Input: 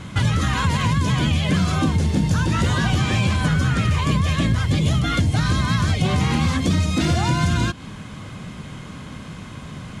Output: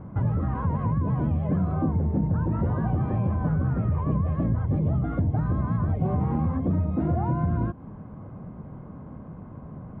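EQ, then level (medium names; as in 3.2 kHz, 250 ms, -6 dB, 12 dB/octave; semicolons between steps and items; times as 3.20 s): four-pole ladder low-pass 1.1 kHz, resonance 20%; 0.0 dB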